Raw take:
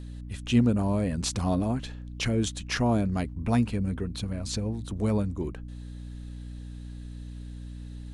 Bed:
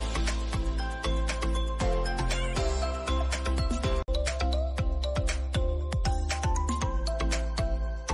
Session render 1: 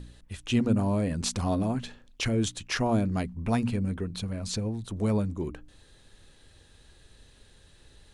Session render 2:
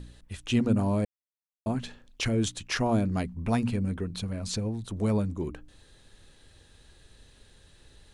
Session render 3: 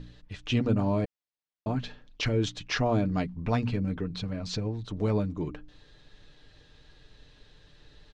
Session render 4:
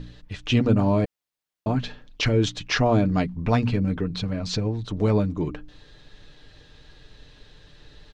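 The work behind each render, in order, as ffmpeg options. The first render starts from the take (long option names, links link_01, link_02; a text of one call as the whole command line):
ffmpeg -i in.wav -af "bandreject=frequency=60:width_type=h:width=4,bandreject=frequency=120:width_type=h:width=4,bandreject=frequency=180:width_type=h:width=4,bandreject=frequency=240:width_type=h:width=4,bandreject=frequency=300:width_type=h:width=4" out.wav
ffmpeg -i in.wav -filter_complex "[0:a]asplit=3[link_01][link_02][link_03];[link_01]atrim=end=1.05,asetpts=PTS-STARTPTS,afade=type=out:start_time=1.046:duration=0.004:curve=hsin[link_04];[link_02]atrim=start=1.05:end=1.66,asetpts=PTS-STARTPTS,volume=0[link_05];[link_03]atrim=start=1.66,asetpts=PTS-STARTPTS,afade=type=in:duration=0.004:curve=hsin[link_06];[link_04][link_05][link_06]concat=n=3:v=0:a=1" out.wav
ffmpeg -i in.wav -af "lowpass=frequency=5500:width=0.5412,lowpass=frequency=5500:width=1.3066,aecho=1:1:6.7:0.45" out.wav
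ffmpeg -i in.wav -af "volume=6dB" out.wav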